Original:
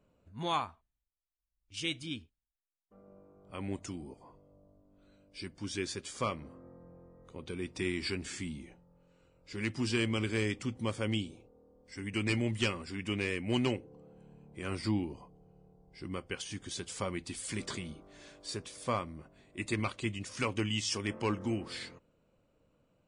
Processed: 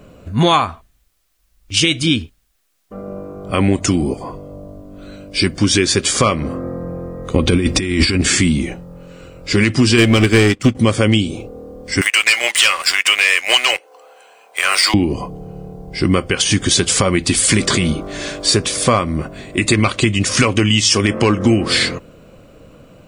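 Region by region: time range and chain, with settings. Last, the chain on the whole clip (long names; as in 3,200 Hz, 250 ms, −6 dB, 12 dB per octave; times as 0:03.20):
0:07.34–0:08.21: low-shelf EQ 140 Hz +8.5 dB + comb filter 3.7 ms, depth 31% + compressor whose output falls as the input rises −38 dBFS, ratio −0.5
0:09.98–0:10.75: leveller curve on the samples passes 2 + expander for the loud parts 2.5 to 1, over −41 dBFS
0:12.01–0:14.94: high-pass filter 650 Hz 24 dB per octave + tilt shelving filter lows −5 dB, about 820 Hz + leveller curve on the samples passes 2
whole clip: notch filter 900 Hz, Q 7.7; downward compressor, threshold −38 dBFS; boost into a limiter +29.5 dB; level −1 dB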